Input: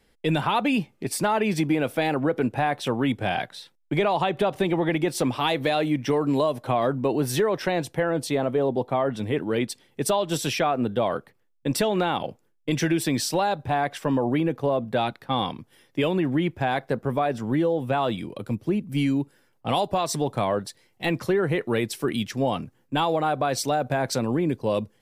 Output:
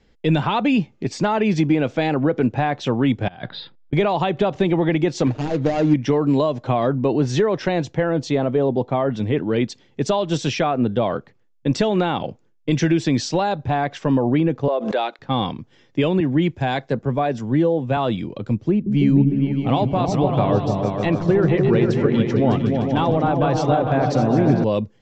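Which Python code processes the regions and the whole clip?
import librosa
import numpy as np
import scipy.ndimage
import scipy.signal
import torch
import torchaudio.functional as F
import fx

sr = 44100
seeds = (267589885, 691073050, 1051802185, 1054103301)

y = fx.chain(x, sr, fx.low_shelf(hz=440.0, db=7.5),
    fx.over_compress(threshold_db=-32.0, ratio=-0.5),
    fx.cheby_ripple(hz=5000.0, ripple_db=6), at=(3.28, 3.93))
y = fx.chain(y, sr, fx.median_filter(points=41),
    fx.comb(ms=6.5, depth=0.53), at=(5.26, 5.94))
y = fx.chain(y, sr, fx.highpass(hz=380.0, slope=24),
    fx.pre_swell(db_per_s=76.0), at=(14.68, 15.19))
y = fx.chain(y, sr, fx.high_shelf(hz=5600.0, db=8.0),
    fx.notch(hz=1300.0, q=15.0),
    fx.band_widen(depth_pct=70), at=(16.2, 17.97))
y = fx.chain(y, sr, fx.high_shelf(hz=3900.0, db=-10.5),
    fx.echo_opening(ms=151, hz=200, octaves=2, feedback_pct=70, wet_db=0), at=(18.71, 24.64))
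y = scipy.signal.sosfilt(scipy.signal.ellip(4, 1.0, 40, 7000.0, 'lowpass', fs=sr, output='sos'), y)
y = fx.low_shelf(y, sr, hz=400.0, db=7.5)
y = F.gain(torch.from_numpy(y), 1.5).numpy()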